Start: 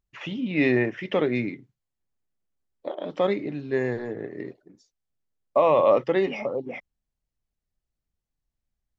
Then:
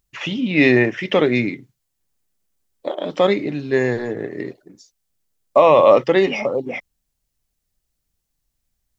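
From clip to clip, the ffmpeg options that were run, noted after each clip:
-af "highshelf=f=3900:g=10.5,volume=2.24"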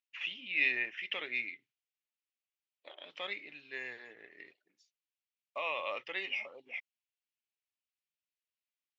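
-af "bandpass=f=2600:t=q:w=2.9:csg=0,volume=0.422"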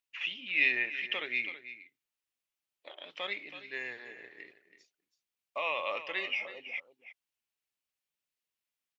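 -af "aecho=1:1:327:0.211,volume=1.41"

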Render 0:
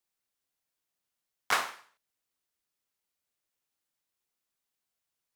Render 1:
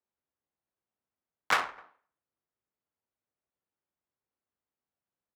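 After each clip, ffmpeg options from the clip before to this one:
-filter_complex "[0:a]asplit=2[s0][s1];[s1]adelay=256.6,volume=0.0631,highshelf=f=4000:g=-5.77[s2];[s0][s2]amix=inputs=2:normalize=0,adynamicsmooth=sensitivity=3.5:basefreq=1400,afreqshift=41,volume=1.26"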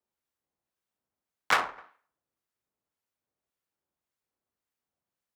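-filter_complex "[0:a]acrossover=split=1200[s0][s1];[s0]aeval=exprs='val(0)*(1-0.5/2+0.5/2*cos(2*PI*1.8*n/s))':c=same[s2];[s1]aeval=exprs='val(0)*(1-0.5/2-0.5/2*cos(2*PI*1.8*n/s))':c=same[s3];[s2][s3]amix=inputs=2:normalize=0,volume=1.68"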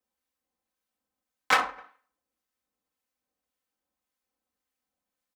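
-af "aecho=1:1:3.9:0.81"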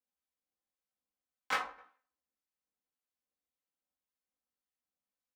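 -af "flanger=delay=15.5:depth=2.4:speed=1,volume=0.398"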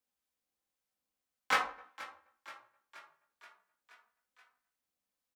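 -filter_complex "[0:a]asplit=7[s0][s1][s2][s3][s4][s5][s6];[s1]adelay=477,afreqshift=36,volume=0.141[s7];[s2]adelay=954,afreqshift=72,volume=0.0902[s8];[s3]adelay=1431,afreqshift=108,volume=0.0575[s9];[s4]adelay=1908,afreqshift=144,volume=0.0372[s10];[s5]adelay=2385,afreqshift=180,volume=0.0237[s11];[s6]adelay=2862,afreqshift=216,volume=0.0151[s12];[s0][s7][s8][s9][s10][s11][s12]amix=inputs=7:normalize=0,volume=1.58"

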